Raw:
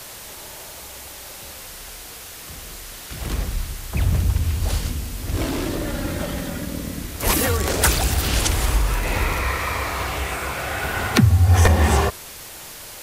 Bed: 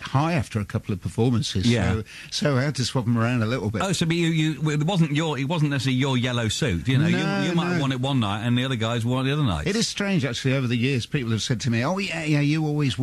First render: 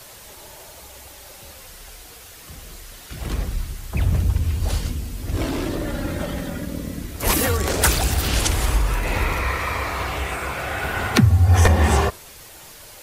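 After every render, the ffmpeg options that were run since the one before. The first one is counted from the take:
-af "afftdn=nr=6:nf=-38"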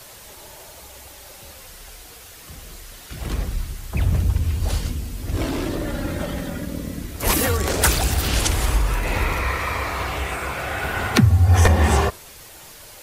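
-af anull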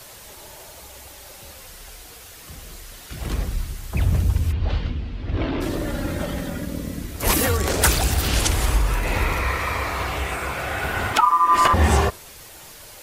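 -filter_complex "[0:a]asplit=3[a][b][c];[a]afade=t=out:st=4.51:d=0.02[d];[b]lowpass=f=3.7k:w=0.5412,lowpass=f=3.7k:w=1.3066,afade=t=in:st=4.51:d=0.02,afade=t=out:st=5.6:d=0.02[e];[c]afade=t=in:st=5.6:d=0.02[f];[d][e][f]amix=inputs=3:normalize=0,asettb=1/sr,asplit=3[g][h][i];[g]atrim=end=11.134[j];[h]atrim=start=11.13:end=11.74,asetpts=PTS-STARTPTS,afade=t=in:d=0.004:c=qsin,afade=t=out:st=0.606:d=0.004:c=qsin,aeval=exprs='val(0)*sin(2*PI*1100*n/s)':c=same[k];[i]atrim=start=11.736[l];[j][k]acrossfade=d=0.004:c1=hsin:c2=qsin[m];[m][l]acrossfade=d=0.004:c1=qsin:c2=hsin"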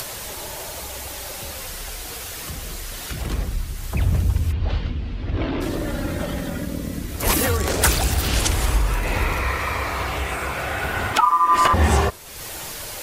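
-af "acompressor=mode=upward:threshold=-22dB:ratio=2.5"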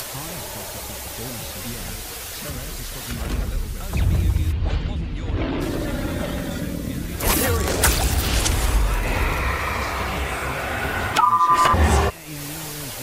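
-filter_complex "[1:a]volume=-14.5dB[a];[0:a][a]amix=inputs=2:normalize=0"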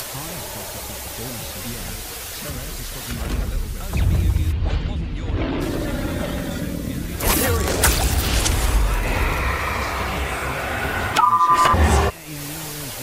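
-af "volume=1dB"

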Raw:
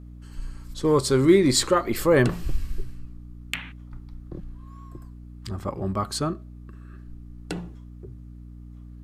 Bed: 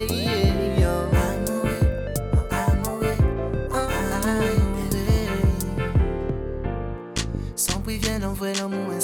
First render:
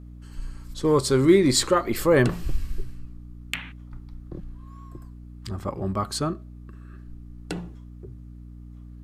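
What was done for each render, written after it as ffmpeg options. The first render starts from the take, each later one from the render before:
-af anull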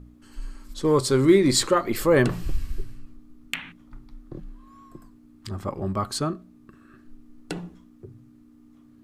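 -af "bandreject=f=60:t=h:w=4,bandreject=f=120:t=h:w=4,bandreject=f=180:t=h:w=4"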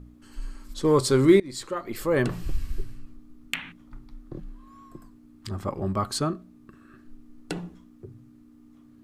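-filter_complex "[0:a]asplit=2[a][b];[a]atrim=end=1.4,asetpts=PTS-STARTPTS,afade=t=out:st=1.396:d=0.004:c=hsin:silence=0.0630957[c];[b]atrim=start=1.4,asetpts=PTS-STARTPTS,afade=t=in:d=1.39:silence=0.0630957[d];[c][d]concat=n=2:v=0:a=1"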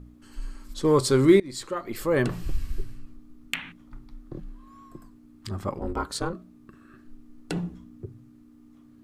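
-filter_complex "[0:a]asplit=3[a][b][c];[a]afade=t=out:st=5.78:d=0.02[d];[b]aeval=exprs='val(0)*sin(2*PI*170*n/s)':c=same,afade=t=in:st=5.78:d=0.02,afade=t=out:st=6.32:d=0.02[e];[c]afade=t=in:st=6.32:d=0.02[f];[d][e][f]amix=inputs=3:normalize=0,asettb=1/sr,asplit=3[g][h][i];[g]atrim=end=7.534[j];[h]atrim=start=7.53:end=8.06,asetpts=PTS-STARTPTS,afade=t=in:d=0.004:c=qsin,afade=t=out:st=0.526:d=0.004:c=qsin,equalizer=f=88:w=0.38:g=8.5[k];[i]atrim=start=8.056[l];[j][k]acrossfade=d=0.004:c1=hsin:c2=qsin[m];[m][l]acrossfade=d=0.004:c1=qsin:c2=hsin"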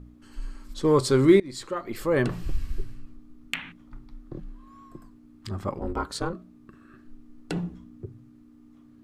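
-af "highshelf=f=7.3k:g=-6"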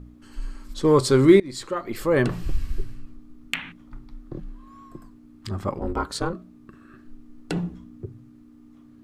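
-af "volume=3dB"

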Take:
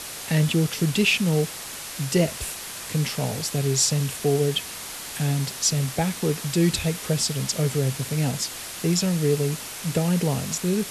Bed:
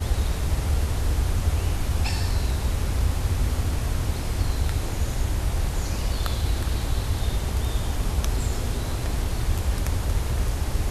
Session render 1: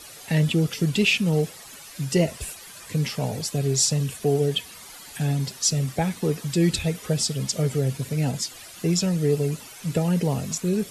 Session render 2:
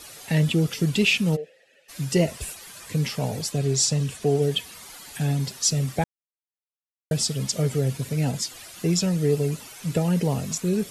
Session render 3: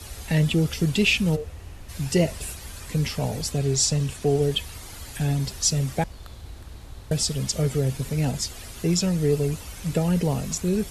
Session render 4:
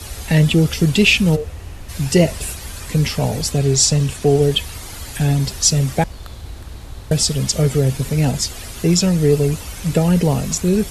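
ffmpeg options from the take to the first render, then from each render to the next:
-af "afftdn=nr=12:nf=-36"
-filter_complex "[0:a]asplit=3[a][b][c];[a]afade=t=out:st=1.35:d=0.02[d];[b]asplit=3[e][f][g];[e]bandpass=f=530:t=q:w=8,volume=0dB[h];[f]bandpass=f=1.84k:t=q:w=8,volume=-6dB[i];[g]bandpass=f=2.48k:t=q:w=8,volume=-9dB[j];[h][i][j]amix=inputs=3:normalize=0,afade=t=in:st=1.35:d=0.02,afade=t=out:st=1.88:d=0.02[k];[c]afade=t=in:st=1.88:d=0.02[l];[d][k][l]amix=inputs=3:normalize=0,asettb=1/sr,asplit=3[m][n][o];[m]atrim=end=3.524[p];[n]atrim=start=3.52:end=4.42,asetpts=PTS-STARTPTS,afade=t=in:d=0.004:c=qsin,afade=t=out:st=0.896:d=0.004:c=qsin,lowpass=9.4k[q];[o]atrim=start=4.416[r];[p][q]acrossfade=d=0.004:c1=hsin:c2=qsin[s];[s][r]acrossfade=d=0.004:c1=qsin:c2=hsin,asplit=3[t][u][v];[t]atrim=end=6.04,asetpts=PTS-STARTPTS,afade=t=out:st=6.036:d=0.004:c=hsin[w];[u]atrim=start=6.04:end=7.11,asetpts=PTS-STARTPTS,volume=0[x];[v]atrim=start=7.11,asetpts=PTS-STARTPTS,afade=t=in:d=0.004:c=hsin[y];[w][x][y]concat=n=3:v=0:a=1"
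-filter_complex "[1:a]volume=-16dB[a];[0:a][a]amix=inputs=2:normalize=0"
-af "volume=7.5dB"

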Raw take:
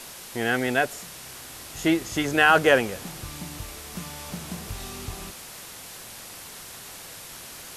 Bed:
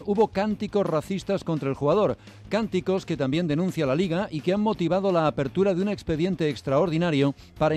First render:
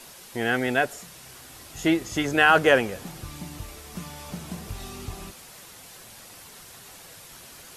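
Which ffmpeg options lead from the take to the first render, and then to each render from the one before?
-af "afftdn=nr=6:nf=-42"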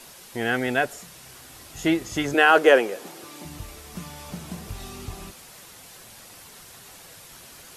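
-filter_complex "[0:a]asettb=1/sr,asplit=3[a][b][c];[a]atrim=end=2.344[d];[b]atrim=start=2.34:end=3.45,asetpts=PTS-STARTPTS,afade=t=in:d=0.004:c=qsin,afade=t=out:st=1.106:d=0.004:c=qsin,highpass=f=370:t=q:w=1.7[e];[c]atrim=start=3.446[f];[d][e]acrossfade=d=0.004:c1=hsin:c2=qsin[g];[g][f]acrossfade=d=0.004:c1=qsin:c2=hsin"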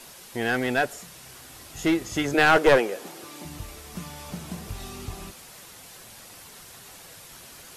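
-af "aeval=exprs='clip(val(0),-1,0.141)':c=same"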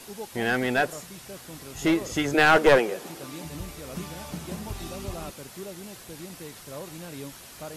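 -filter_complex "[1:a]volume=-17.5dB[a];[0:a][a]amix=inputs=2:normalize=0"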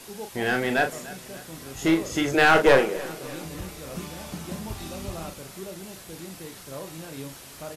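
-filter_complex "[0:a]asplit=2[a][b];[b]adelay=37,volume=-7dB[c];[a][c]amix=inputs=2:normalize=0,aecho=1:1:292|584|876|1168:0.112|0.0572|0.0292|0.0149"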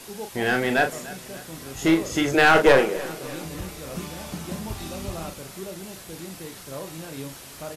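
-af "volume=2dB,alimiter=limit=-3dB:level=0:latency=1"

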